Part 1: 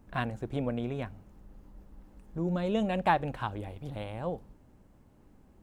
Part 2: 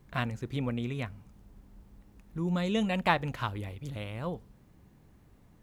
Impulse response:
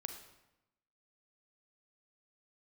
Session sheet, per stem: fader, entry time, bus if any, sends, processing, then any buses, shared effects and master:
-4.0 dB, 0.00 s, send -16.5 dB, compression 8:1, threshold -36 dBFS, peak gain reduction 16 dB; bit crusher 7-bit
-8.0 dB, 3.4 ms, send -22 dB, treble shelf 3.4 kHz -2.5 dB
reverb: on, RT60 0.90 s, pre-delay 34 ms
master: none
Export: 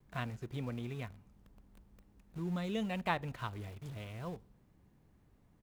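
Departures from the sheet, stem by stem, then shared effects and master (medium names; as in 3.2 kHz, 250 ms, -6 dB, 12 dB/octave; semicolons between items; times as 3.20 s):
stem 1 -4.0 dB -> -16.0 dB; stem 2: polarity flipped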